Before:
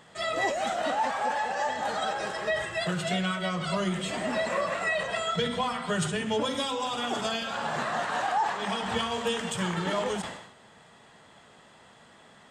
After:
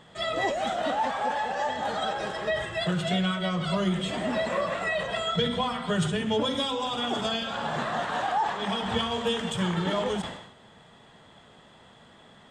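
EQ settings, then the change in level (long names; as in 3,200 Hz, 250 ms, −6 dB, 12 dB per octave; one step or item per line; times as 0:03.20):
spectral tilt −1.5 dB per octave
parametric band 3,400 Hz +7 dB 0.28 octaves
0.0 dB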